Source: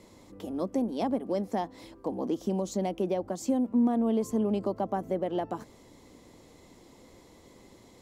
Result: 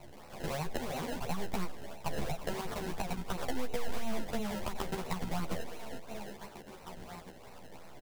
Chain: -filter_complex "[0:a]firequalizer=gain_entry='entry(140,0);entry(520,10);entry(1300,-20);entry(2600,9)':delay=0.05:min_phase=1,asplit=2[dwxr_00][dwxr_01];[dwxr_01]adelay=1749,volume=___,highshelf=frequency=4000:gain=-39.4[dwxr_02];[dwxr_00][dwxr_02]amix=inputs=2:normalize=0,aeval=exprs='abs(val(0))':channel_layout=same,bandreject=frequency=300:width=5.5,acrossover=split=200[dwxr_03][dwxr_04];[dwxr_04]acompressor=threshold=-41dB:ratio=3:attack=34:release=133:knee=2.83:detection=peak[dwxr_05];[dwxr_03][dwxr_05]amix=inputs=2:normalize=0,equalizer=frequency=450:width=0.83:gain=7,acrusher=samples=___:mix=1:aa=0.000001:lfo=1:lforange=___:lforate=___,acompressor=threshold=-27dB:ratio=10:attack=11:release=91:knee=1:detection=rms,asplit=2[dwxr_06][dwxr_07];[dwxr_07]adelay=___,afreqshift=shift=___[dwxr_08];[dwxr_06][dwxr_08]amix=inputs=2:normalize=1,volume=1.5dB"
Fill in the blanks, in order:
-20dB, 26, 26, 2.9, 11.6, 0.49